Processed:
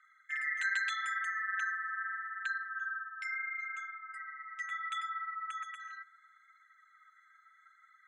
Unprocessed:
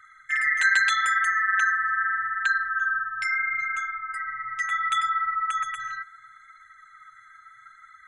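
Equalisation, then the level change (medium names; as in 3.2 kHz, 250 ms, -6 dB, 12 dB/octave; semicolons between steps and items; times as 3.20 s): band-pass filter 6.9 kHz, Q 0.73; distance through air 90 m; peaking EQ 5.1 kHz -10.5 dB 1.3 oct; 0.0 dB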